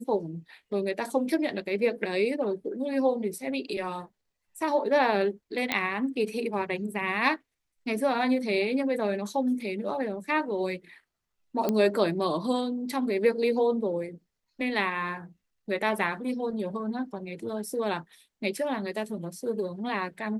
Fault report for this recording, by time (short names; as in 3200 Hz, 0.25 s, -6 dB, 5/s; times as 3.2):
5.72 pop -11 dBFS
11.69 pop -13 dBFS